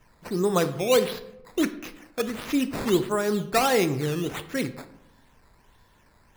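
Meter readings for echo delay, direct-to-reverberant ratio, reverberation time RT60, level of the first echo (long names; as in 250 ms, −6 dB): no echo audible, 11.0 dB, 0.90 s, no echo audible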